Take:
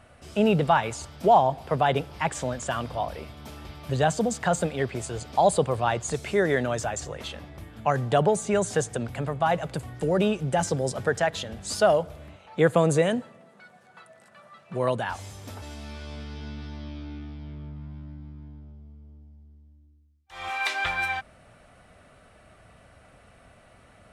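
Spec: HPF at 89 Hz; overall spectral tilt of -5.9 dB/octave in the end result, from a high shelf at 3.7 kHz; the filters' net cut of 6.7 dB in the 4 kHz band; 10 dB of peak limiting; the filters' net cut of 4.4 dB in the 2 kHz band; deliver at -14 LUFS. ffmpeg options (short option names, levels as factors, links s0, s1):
-af "highpass=89,equalizer=f=2000:t=o:g=-3.5,highshelf=f=3700:g=-6.5,equalizer=f=4000:t=o:g=-3.5,volume=6.68,alimiter=limit=0.841:level=0:latency=1"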